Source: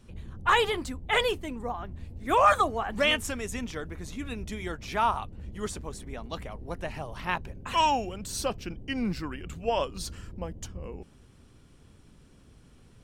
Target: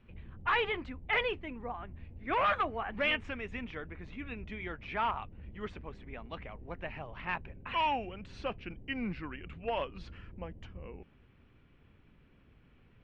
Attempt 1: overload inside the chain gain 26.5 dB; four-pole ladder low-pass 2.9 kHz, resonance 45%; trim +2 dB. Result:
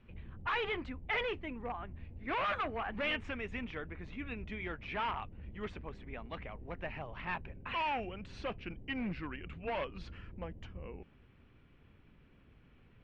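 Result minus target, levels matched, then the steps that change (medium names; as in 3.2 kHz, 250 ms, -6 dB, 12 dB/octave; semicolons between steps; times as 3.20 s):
overload inside the chain: distortion +7 dB
change: overload inside the chain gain 19.5 dB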